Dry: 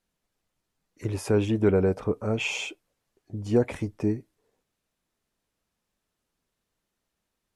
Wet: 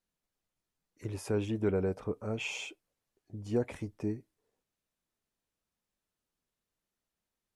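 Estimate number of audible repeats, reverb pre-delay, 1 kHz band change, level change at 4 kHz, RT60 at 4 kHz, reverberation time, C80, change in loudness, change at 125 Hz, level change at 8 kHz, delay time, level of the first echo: no echo, no reverb, -8.5 dB, -8.0 dB, no reverb, no reverb, no reverb, -8.5 dB, -8.5 dB, -7.0 dB, no echo, no echo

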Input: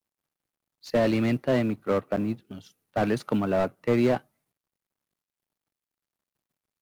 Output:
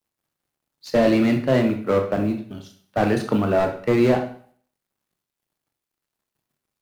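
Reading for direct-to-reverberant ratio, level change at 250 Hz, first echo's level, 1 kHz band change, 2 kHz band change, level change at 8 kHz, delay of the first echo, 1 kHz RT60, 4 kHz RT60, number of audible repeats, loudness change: 4.0 dB, +5.5 dB, no echo, +5.5 dB, +5.5 dB, no reading, no echo, 0.55 s, 0.50 s, no echo, +5.5 dB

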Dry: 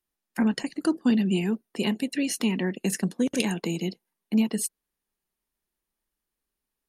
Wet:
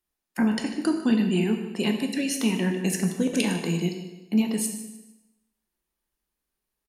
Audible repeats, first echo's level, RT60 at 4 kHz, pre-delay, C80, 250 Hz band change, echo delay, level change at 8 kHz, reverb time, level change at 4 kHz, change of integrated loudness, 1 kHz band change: 3, -14.5 dB, 0.95 s, 5 ms, 8.0 dB, +1.0 dB, 151 ms, +1.5 dB, 1.0 s, +1.5 dB, +1.5 dB, +1.5 dB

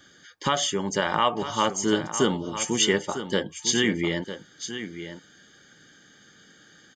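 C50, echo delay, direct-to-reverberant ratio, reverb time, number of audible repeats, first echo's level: no reverb, 952 ms, no reverb, no reverb, 1, -11.0 dB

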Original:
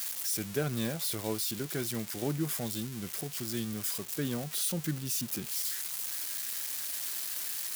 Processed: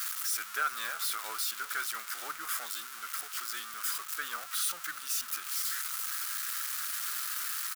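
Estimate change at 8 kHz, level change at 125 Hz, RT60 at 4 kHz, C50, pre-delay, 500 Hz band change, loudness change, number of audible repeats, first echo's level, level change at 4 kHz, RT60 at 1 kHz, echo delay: 0.0 dB, under -35 dB, no reverb, no reverb, no reverb, -16.5 dB, 0.0 dB, 4, -20.0 dB, +1.0 dB, no reverb, 376 ms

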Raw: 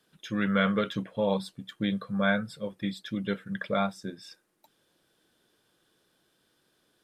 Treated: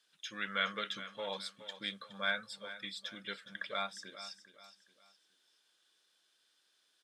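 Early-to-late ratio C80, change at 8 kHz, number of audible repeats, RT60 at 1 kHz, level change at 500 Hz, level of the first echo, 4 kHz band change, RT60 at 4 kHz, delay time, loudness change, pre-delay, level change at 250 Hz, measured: no reverb, -0.5 dB, 3, no reverb, -14.0 dB, -13.5 dB, 0.0 dB, no reverb, 417 ms, -9.5 dB, no reverb, -22.0 dB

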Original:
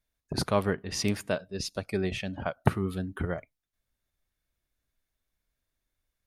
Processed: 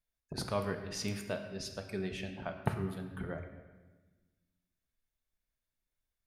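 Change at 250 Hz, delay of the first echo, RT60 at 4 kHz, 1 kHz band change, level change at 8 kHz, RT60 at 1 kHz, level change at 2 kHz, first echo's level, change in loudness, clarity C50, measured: -7.5 dB, no echo, 1.1 s, -7.5 dB, -7.0 dB, 1.2 s, -7.0 dB, no echo, -7.5 dB, 7.5 dB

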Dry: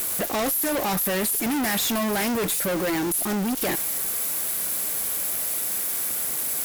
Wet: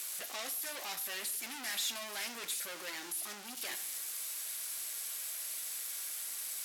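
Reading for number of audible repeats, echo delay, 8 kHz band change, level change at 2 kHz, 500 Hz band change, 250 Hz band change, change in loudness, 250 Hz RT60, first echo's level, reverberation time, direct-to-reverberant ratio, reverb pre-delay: no echo, no echo, -11.5 dB, -12.0 dB, -22.5 dB, -29.0 dB, -14.0 dB, 0.90 s, no echo, 0.65 s, 8.0 dB, 8 ms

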